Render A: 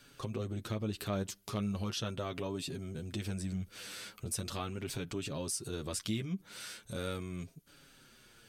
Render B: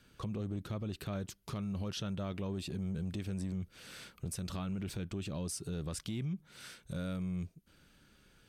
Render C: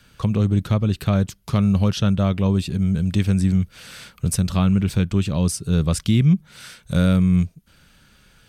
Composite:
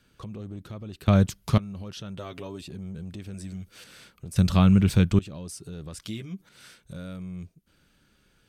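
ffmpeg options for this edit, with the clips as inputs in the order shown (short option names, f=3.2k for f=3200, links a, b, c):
-filter_complex "[2:a]asplit=2[a][b];[0:a]asplit=3[c][d][e];[1:a]asplit=6[f][g][h][i][j][k];[f]atrim=end=1.082[l];[a]atrim=start=1.078:end=1.582[m];[g]atrim=start=1.578:end=2.172[n];[c]atrim=start=2.168:end=2.612[o];[h]atrim=start=2.608:end=3.342[p];[d]atrim=start=3.338:end=3.842[q];[i]atrim=start=3.838:end=4.362[r];[b]atrim=start=4.358:end=5.192[s];[j]atrim=start=5.188:end=6.022[t];[e]atrim=start=6.018:end=6.492[u];[k]atrim=start=6.488[v];[l][m]acrossfade=d=0.004:c1=hsin:c2=hsin[w];[w][n]acrossfade=d=0.004:c1=hsin:c2=hsin[x];[x][o]acrossfade=d=0.004:c1=hsin:c2=hsin[y];[y][p]acrossfade=d=0.004:c1=hsin:c2=hsin[z];[z][q]acrossfade=d=0.004:c1=hsin:c2=hsin[aa];[aa][r]acrossfade=d=0.004:c1=hsin:c2=hsin[ab];[ab][s]acrossfade=d=0.004:c1=hsin:c2=hsin[ac];[ac][t]acrossfade=d=0.004:c1=hsin:c2=hsin[ad];[ad][u]acrossfade=d=0.004:c1=hsin:c2=hsin[ae];[ae][v]acrossfade=d=0.004:c1=hsin:c2=hsin"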